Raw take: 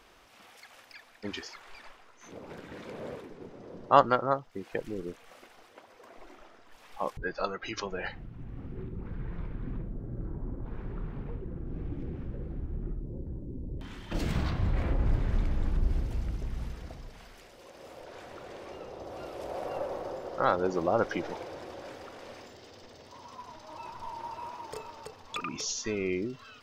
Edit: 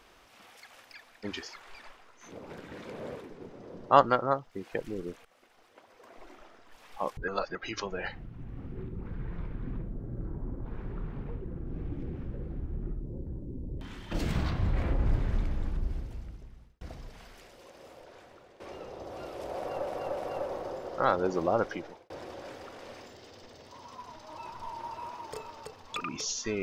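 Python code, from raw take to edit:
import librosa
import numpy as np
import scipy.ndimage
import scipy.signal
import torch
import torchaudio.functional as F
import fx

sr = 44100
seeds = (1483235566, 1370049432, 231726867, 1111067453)

y = fx.edit(x, sr, fx.fade_in_from(start_s=5.25, length_s=0.98, floor_db=-14.5),
    fx.reverse_span(start_s=7.28, length_s=0.27),
    fx.fade_out_span(start_s=15.17, length_s=1.64),
    fx.fade_out_to(start_s=17.49, length_s=1.11, floor_db=-15.0),
    fx.repeat(start_s=19.57, length_s=0.3, count=3),
    fx.fade_out_span(start_s=20.92, length_s=0.58), tone=tone)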